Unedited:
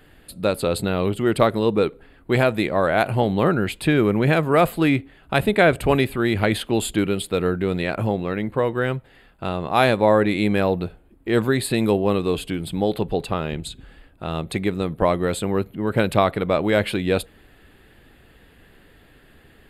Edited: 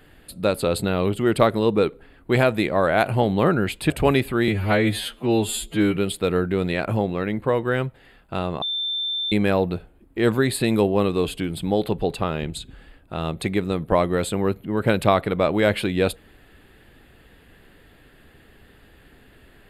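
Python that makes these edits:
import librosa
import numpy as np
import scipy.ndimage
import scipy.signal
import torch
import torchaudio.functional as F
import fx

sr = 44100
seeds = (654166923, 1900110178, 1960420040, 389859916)

y = fx.edit(x, sr, fx.cut(start_s=3.9, length_s=1.84),
    fx.stretch_span(start_s=6.32, length_s=0.74, factor=2.0),
    fx.bleep(start_s=9.72, length_s=0.7, hz=3560.0, db=-23.0), tone=tone)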